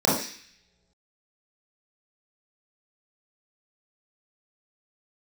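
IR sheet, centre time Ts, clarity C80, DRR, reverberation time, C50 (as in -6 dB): 49 ms, 8.0 dB, -7.0 dB, no single decay rate, 2.5 dB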